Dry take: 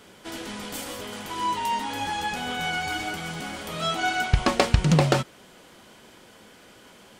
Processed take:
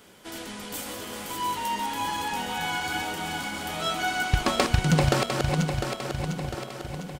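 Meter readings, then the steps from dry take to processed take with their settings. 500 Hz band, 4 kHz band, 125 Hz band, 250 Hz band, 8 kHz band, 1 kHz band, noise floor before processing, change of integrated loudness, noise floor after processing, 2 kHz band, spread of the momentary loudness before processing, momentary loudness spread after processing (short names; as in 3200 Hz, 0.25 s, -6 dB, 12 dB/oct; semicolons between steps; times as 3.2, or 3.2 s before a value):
-0.5 dB, 0.0 dB, -0.5 dB, -0.5 dB, +2.0 dB, -0.5 dB, -52 dBFS, -1.5 dB, -40 dBFS, -0.5 dB, 14 LU, 13 LU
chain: regenerating reverse delay 0.351 s, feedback 72%, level -4.5 dB; high shelf 11000 Hz +9 dB; outdoor echo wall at 250 m, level -14 dB; gain -3 dB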